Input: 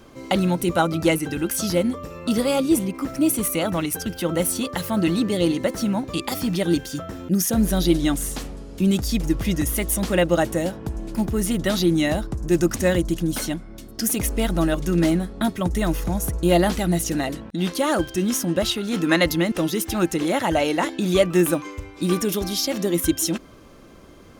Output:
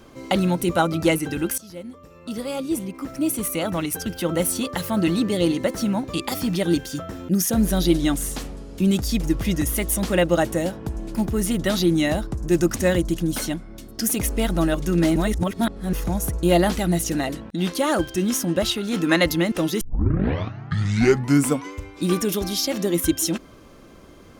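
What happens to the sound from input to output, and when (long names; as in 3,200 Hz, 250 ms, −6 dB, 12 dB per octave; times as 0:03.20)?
0:01.58–0:04.15: fade in, from −21 dB
0:15.16–0:15.93: reverse
0:19.81: tape start 1.93 s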